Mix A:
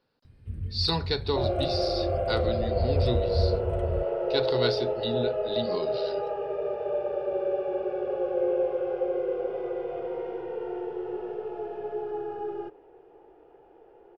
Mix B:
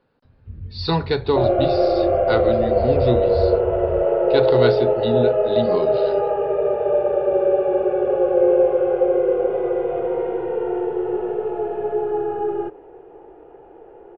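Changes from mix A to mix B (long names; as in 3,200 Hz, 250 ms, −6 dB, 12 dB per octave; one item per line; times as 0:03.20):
speech +10.0 dB
second sound +11.5 dB
master: add high-frequency loss of the air 360 metres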